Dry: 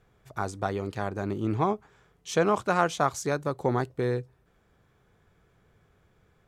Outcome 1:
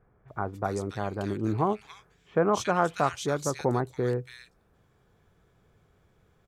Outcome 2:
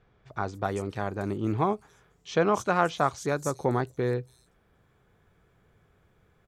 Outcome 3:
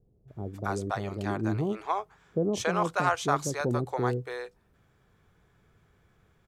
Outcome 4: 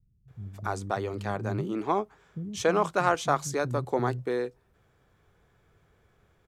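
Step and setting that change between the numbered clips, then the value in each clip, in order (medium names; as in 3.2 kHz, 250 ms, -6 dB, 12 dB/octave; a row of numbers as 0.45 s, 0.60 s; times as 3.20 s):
bands offset in time, split: 1.9 kHz, 5.6 kHz, 530 Hz, 200 Hz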